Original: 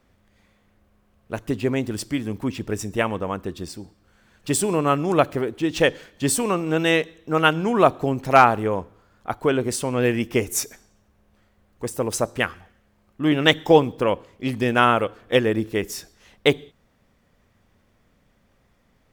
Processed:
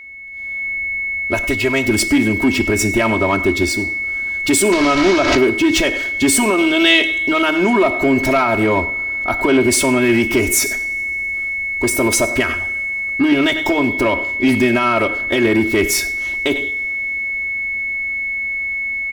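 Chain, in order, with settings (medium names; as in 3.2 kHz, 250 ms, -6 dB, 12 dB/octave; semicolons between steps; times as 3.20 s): 4.72–5.37 s: one-bit delta coder 32 kbps, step -19 dBFS; compression, threshold -19 dBFS, peak gain reduction 11 dB; 1.34–1.86 s: peaking EQ 270 Hz -12.5 dB 1.7 oct; delay 98 ms -21.5 dB; peak limiter -19.5 dBFS, peak gain reduction 11 dB; comb 3.1 ms, depth 98%; whistle 2.2 kHz -32 dBFS; saturation -19 dBFS, distortion -18 dB; level rider gain up to 15 dB; 6.58–7.42 s: peaking EQ 3.3 kHz +14.5 dB 0.48 oct; two-slope reverb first 0.49 s, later 4 s, from -22 dB, DRR 12.5 dB; trim -2 dB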